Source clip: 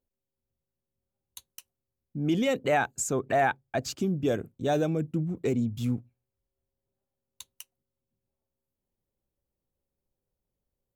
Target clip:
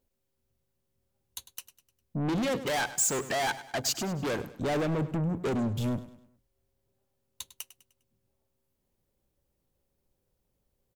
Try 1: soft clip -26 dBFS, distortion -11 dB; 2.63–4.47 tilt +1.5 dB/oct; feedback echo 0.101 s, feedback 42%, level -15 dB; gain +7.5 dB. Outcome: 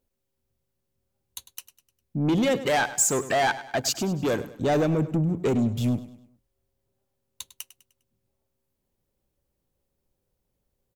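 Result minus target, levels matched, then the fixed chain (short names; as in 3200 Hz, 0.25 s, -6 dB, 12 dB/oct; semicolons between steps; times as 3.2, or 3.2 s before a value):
soft clip: distortion -6 dB
soft clip -34.5 dBFS, distortion -6 dB; 2.63–4.47 tilt +1.5 dB/oct; feedback echo 0.101 s, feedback 42%, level -15 dB; gain +7.5 dB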